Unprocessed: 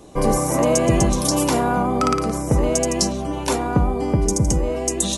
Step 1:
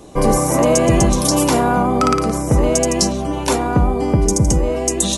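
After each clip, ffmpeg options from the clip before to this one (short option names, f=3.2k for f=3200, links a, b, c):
-af "apsyclip=10dB,volume=-6dB"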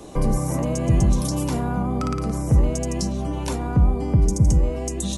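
-filter_complex "[0:a]acrossover=split=190[a][b];[b]acompressor=threshold=-32dB:ratio=3[c];[a][c]amix=inputs=2:normalize=0"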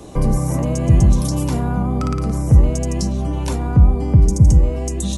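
-af "equalizer=f=83:t=o:w=1.9:g=6,volume=1.5dB"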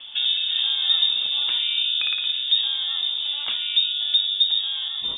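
-af "highpass=190,lowpass=f=3.2k:t=q:w=0.5098,lowpass=f=3.2k:t=q:w=0.6013,lowpass=f=3.2k:t=q:w=0.9,lowpass=f=3.2k:t=q:w=2.563,afreqshift=-3800"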